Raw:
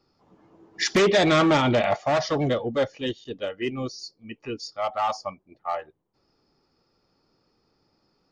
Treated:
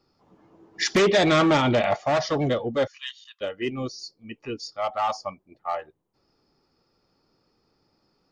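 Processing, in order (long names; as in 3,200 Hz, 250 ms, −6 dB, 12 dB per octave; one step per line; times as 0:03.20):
0:02.87–0:03.41: linear-phase brick-wall high-pass 1,000 Hz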